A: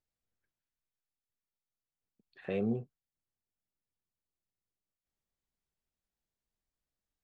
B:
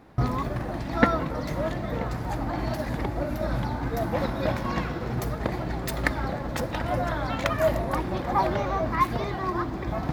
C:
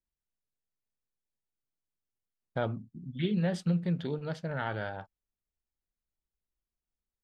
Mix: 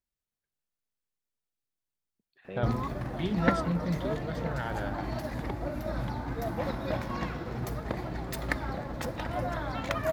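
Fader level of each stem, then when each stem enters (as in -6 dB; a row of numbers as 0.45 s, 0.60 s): -6.5 dB, -5.5 dB, -1.5 dB; 0.00 s, 2.45 s, 0.00 s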